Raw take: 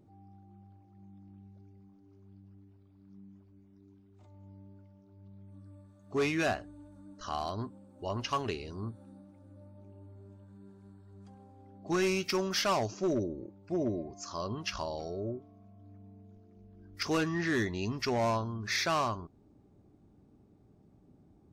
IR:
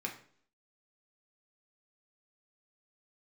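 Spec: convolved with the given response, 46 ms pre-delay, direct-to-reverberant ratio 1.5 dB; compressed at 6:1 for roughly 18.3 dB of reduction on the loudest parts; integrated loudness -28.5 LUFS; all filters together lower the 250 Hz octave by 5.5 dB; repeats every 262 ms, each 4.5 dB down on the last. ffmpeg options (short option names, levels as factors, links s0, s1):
-filter_complex "[0:a]equalizer=f=250:t=o:g=-8.5,acompressor=threshold=0.00398:ratio=6,aecho=1:1:262|524|786|1048|1310|1572|1834|2096|2358:0.596|0.357|0.214|0.129|0.0772|0.0463|0.0278|0.0167|0.01,asplit=2[s0][s1];[1:a]atrim=start_sample=2205,adelay=46[s2];[s1][s2]afir=irnorm=-1:irlink=0,volume=0.668[s3];[s0][s3]amix=inputs=2:normalize=0,volume=10.6"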